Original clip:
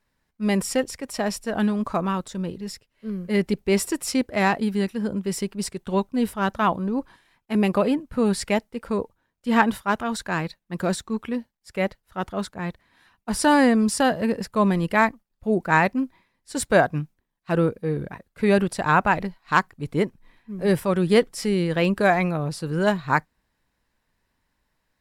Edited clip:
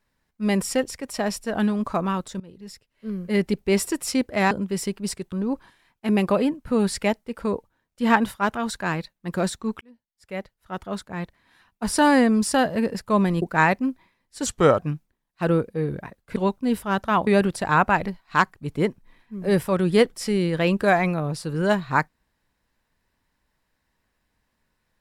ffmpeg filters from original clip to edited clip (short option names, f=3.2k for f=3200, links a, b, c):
-filter_complex "[0:a]asplit=10[a][b][c][d][e][f][g][h][i][j];[a]atrim=end=2.4,asetpts=PTS-STARTPTS,afade=t=out:st=2.396:d=0.004:c=hsin:silence=0.0891251[k];[b]atrim=start=2.4:end=4.512,asetpts=PTS-STARTPTS,afade=t=in:d=0.7:silence=0.0891251[l];[c]atrim=start=5.058:end=5.872[m];[d]atrim=start=6.778:end=11.27,asetpts=PTS-STARTPTS,afade=t=out:st=4.488:d=0.004:c=hsin[n];[e]atrim=start=11.27:end=14.882,asetpts=PTS-STARTPTS,afade=t=in:d=2.05:c=qsin[o];[f]atrim=start=15.558:end=16.604[p];[g]atrim=start=16.6:end=16.87,asetpts=PTS-STARTPTS,asetrate=36162,aresample=44100[q];[h]atrim=start=16.866:end=18.442[r];[i]atrim=start=5.868:end=6.782[s];[j]atrim=start=18.438[t];[k][l]concat=n=2:v=0:a=1[u];[u][m]acrossfade=d=0.004:c1=hsin:c2=hsin[v];[n][o]concat=n=2:v=0:a=1[w];[v][w]acrossfade=d=0.004:c1=hsin:c2=hsin[x];[x][p]acrossfade=d=0.004:c1=hsin:c2=hsin[y];[y][q]acrossfade=d=0.004:c1=hsin:c2=hsin[z];[z][r]acrossfade=d=0.004:c1=hsin:c2=hsin[aa];[aa][s]acrossfade=d=0.004:c1=hsin:c2=hsin[ab];[ab][t]acrossfade=d=0.004:c1=hsin:c2=hsin"